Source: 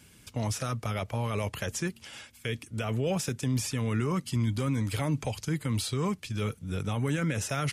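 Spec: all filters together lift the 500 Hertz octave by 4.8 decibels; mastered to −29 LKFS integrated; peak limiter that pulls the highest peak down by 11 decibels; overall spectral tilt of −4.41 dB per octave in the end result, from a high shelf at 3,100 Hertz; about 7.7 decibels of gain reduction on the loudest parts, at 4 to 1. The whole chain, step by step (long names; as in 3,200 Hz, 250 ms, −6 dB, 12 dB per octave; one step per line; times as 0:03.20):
parametric band 500 Hz +5.5 dB
high-shelf EQ 3,100 Hz +7 dB
downward compressor 4 to 1, threshold −32 dBFS
level +11 dB
brickwall limiter −20 dBFS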